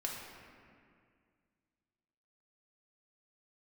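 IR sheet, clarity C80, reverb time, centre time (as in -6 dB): 2.5 dB, 2.1 s, 94 ms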